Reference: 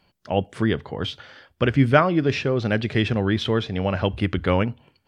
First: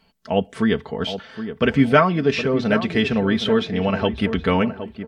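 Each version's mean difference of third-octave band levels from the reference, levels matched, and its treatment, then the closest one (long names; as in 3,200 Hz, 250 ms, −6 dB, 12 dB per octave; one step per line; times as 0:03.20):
3.0 dB: comb filter 4.5 ms, depth 67%
on a send: tape delay 768 ms, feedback 39%, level −9 dB, low-pass 1,200 Hz
on the sum: level +1 dB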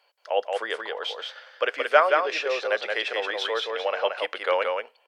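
12.5 dB: Chebyshev high-pass filter 490 Hz, order 4
on a send: single-tap delay 176 ms −4 dB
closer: first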